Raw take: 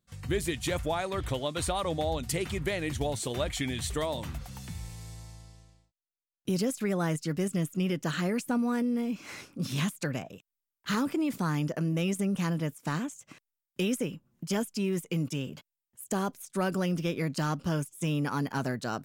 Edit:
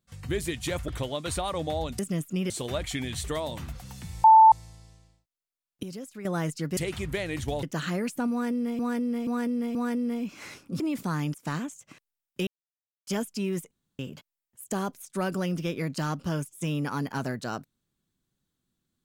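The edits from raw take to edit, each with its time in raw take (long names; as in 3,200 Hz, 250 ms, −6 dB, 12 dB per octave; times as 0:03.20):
0:00.88–0:01.19: remove
0:02.30–0:03.16: swap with 0:07.43–0:07.94
0:04.90–0:05.18: beep over 884 Hz −10.5 dBFS
0:06.49–0:06.91: clip gain −10.5 dB
0:08.62–0:09.10: repeat, 4 plays
0:09.67–0:11.15: remove
0:11.69–0:12.74: remove
0:13.87–0:14.47: silence
0:15.11–0:15.39: fill with room tone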